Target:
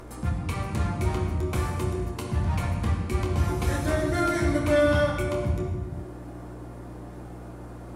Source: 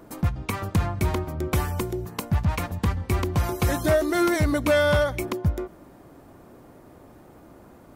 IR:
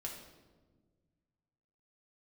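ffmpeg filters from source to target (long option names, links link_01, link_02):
-filter_complex "[0:a]acrossover=split=240[link_01][link_02];[link_02]acompressor=mode=upward:threshold=-33dB:ratio=2.5[link_03];[link_01][link_03]amix=inputs=2:normalize=0,aeval=exprs='val(0)+0.0141*(sin(2*PI*60*n/s)+sin(2*PI*2*60*n/s)/2+sin(2*PI*3*60*n/s)/3+sin(2*PI*4*60*n/s)/4+sin(2*PI*5*60*n/s)/5)':channel_layout=same[link_04];[1:a]atrim=start_sample=2205,afade=type=out:start_time=0.33:duration=0.01,atrim=end_sample=14994,asetrate=22491,aresample=44100[link_05];[link_04][link_05]afir=irnorm=-1:irlink=0,volume=-6dB"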